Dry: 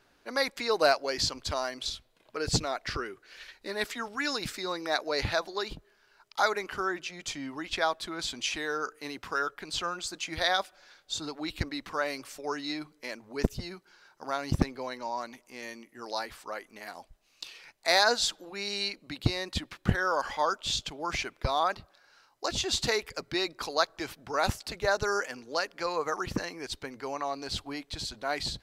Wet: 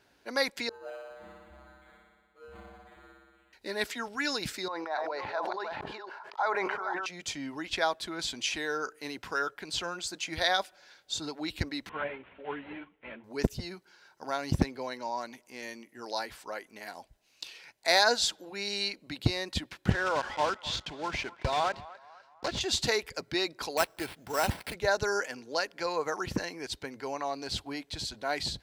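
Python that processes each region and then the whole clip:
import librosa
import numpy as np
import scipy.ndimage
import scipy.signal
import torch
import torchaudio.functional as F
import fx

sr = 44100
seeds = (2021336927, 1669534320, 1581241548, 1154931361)

y = fx.chain(x, sr, fx.comb_fb(f0_hz=67.0, decay_s=1.7, harmonics='odd', damping=0.0, mix_pct=100),
    fx.resample_linear(factor=8), at=(0.69, 3.53))
y = fx.chain(y, sr, fx.reverse_delay(ms=283, wet_db=-7.5),
    fx.bandpass_q(hz=940.0, q=2.0),
    fx.sustainer(db_per_s=22.0), at=(4.68, 7.06))
y = fx.chain(y, sr, fx.cvsd(bps=16000),
    fx.ensemble(), at=(11.89, 13.24))
y = fx.chain(y, sr, fx.block_float(bits=3),
    fx.air_absorb(metres=120.0),
    fx.echo_banded(ms=250, feedback_pct=51, hz=1100.0, wet_db=-17.5), at=(19.9, 22.61))
y = fx.chain(y, sr, fx.cvsd(bps=64000),
    fx.sample_hold(seeds[0], rate_hz=6700.0, jitter_pct=0), at=(23.77, 24.74))
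y = scipy.signal.sosfilt(scipy.signal.butter(2, 45.0, 'highpass', fs=sr, output='sos'), y)
y = fx.notch(y, sr, hz=1200.0, q=7.5)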